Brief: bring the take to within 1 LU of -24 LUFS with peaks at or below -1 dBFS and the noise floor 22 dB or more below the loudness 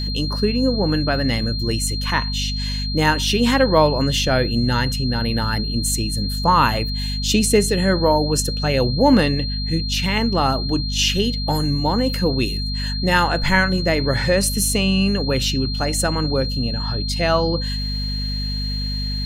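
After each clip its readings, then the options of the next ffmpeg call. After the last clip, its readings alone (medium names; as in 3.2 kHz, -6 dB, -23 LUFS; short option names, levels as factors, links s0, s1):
hum 50 Hz; highest harmonic 250 Hz; hum level -22 dBFS; steady tone 4.2 kHz; tone level -27 dBFS; loudness -19.5 LUFS; peak level -2.0 dBFS; loudness target -24.0 LUFS
-> -af "bandreject=f=50:t=h:w=4,bandreject=f=100:t=h:w=4,bandreject=f=150:t=h:w=4,bandreject=f=200:t=h:w=4,bandreject=f=250:t=h:w=4"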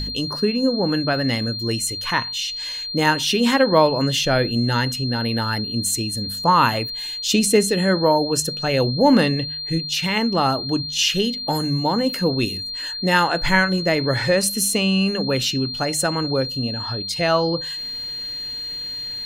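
hum not found; steady tone 4.2 kHz; tone level -27 dBFS
-> -af "bandreject=f=4200:w=30"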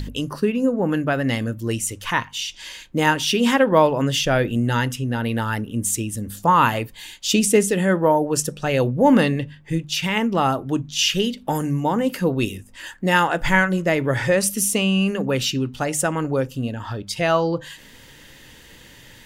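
steady tone not found; loudness -21.0 LUFS; peak level -3.0 dBFS; loudness target -24.0 LUFS
-> -af "volume=0.708"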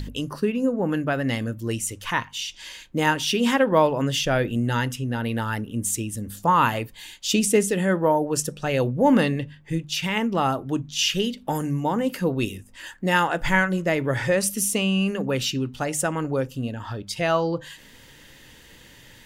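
loudness -24.0 LUFS; peak level -6.0 dBFS; noise floor -49 dBFS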